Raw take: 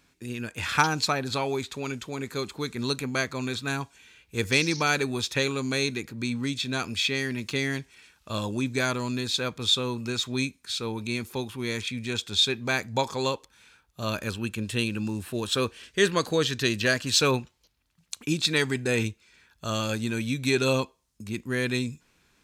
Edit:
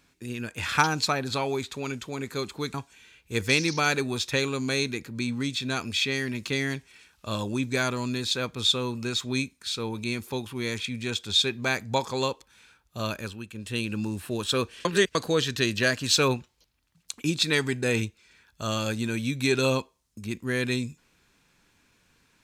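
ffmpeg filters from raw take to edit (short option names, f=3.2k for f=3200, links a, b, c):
-filter_complex "[0:a]asplit=6[a][b][c][d][e][f];[a]atrim=end=2.742[g];[b]atrim=start=3.768:end=14.48,asetpts=PTS-STARTPTS,afade=t=out:st=10.262:d=0.45:silence=0.334965[h];[c]atrim=start=14.48:end=14.54,asetpts=PTS-STARTPTS,volume=-9.5dB[i];[d]atrim=start=14.54:end=15.882,asetpts=PTS-STARTPTS,afade=t=in:d=0.45:silence=0.334965[j];[e]atrim=start=15.878:end=16.182,asetpts=PTS-STARTPTS,areverse[k];[f]atrim=start=16.178[l];[h][i][j]concat=n=3:v=0:a=1[m];[g][m]acrossfade=d=0.004:c1=hsin:c2=hsin[n];[n][k]acrossfade=d=0.004:c1=hsin:c2=hsin[o];[o][l]acrossfade=d=0.004:c1=hsin:c2=hsin"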